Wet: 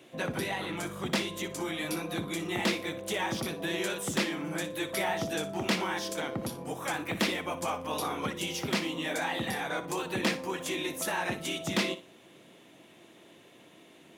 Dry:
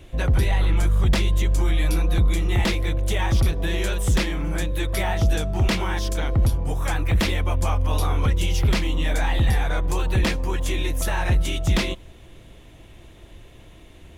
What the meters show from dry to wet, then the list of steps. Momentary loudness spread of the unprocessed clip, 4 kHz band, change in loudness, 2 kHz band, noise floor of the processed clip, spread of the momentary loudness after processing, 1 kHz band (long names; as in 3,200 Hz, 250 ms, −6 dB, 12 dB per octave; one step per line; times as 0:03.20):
4 LU, −4.0 dB, −9.5 dB, −4.0 dB, −56 dBFS, 4 LU, −4.0 dB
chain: high-pass filter 180 Hz 24 dB per octave
on a send: flutter between parallel walls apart 10.2 metres, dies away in 0.27 s
on the sum: level −4 dB